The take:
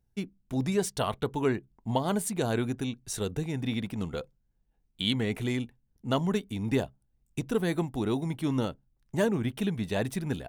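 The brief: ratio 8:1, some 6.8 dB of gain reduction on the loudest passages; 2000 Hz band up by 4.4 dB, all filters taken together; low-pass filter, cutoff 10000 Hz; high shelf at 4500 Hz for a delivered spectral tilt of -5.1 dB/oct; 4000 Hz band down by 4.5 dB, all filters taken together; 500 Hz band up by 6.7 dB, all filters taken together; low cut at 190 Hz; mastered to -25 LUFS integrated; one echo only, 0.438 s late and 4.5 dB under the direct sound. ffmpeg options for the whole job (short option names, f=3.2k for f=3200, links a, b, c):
-af "highpass=190,lowpass=10k,equalizer=f=500:t=o:g=8.5,equalizer=f=2k:t=o:g=7.5,equalizer=f=4k:t=o:g=-8,highshelf=f=4.5k:g=-3.5,acompressor=threshold=-23dB:ratio=8,aecho=1:1:438:0.596,volume=5.5dB"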